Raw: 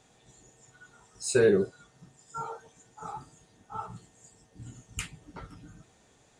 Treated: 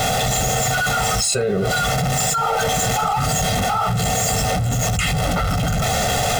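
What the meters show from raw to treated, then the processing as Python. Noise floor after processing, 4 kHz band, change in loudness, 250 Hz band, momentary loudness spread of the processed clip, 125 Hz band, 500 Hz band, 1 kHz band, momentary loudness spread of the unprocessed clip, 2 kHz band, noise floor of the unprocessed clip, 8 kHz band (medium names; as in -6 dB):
-20 dBFS, +24.5 dB, +11.5 dB, +11.5 dB, 2 LU, +22.5 dB, +7.5 dB, +23.5 dB, 25 LU, +18.5 dB, -63 dBFS, +21.5 dB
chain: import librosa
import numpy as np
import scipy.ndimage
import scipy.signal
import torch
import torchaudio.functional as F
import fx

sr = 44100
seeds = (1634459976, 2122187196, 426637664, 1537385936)

y = x + 0.5 * 10.0 ** (-36.0 / 20.0) * np.sign(x)
y = fx.high_shelf(y, sr, hz=7100.0, db=-5.5)
y = y + 0.93 * np.pad(y, (int(1.5 * sr / 1000.0), 0))[:len(y)]
y = fx.small_body(y, sr, hz=(730.0, 3200.0), ring_ms=70, db=9)
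y = fx.env_flatten(y, sr, amount_pct=100)
y = y * librosa.db_to_amplitude(-2.0)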